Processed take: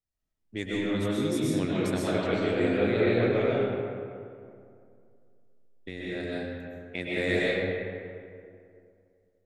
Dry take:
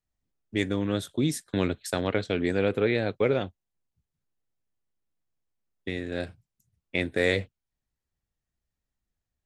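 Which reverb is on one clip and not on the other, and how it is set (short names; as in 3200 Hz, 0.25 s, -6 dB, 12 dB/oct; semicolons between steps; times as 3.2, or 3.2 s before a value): digital reverb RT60 2.4 s, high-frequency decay 0.5×, pre-delay 85 ms, DRR -7 dB; gain -7.5 dB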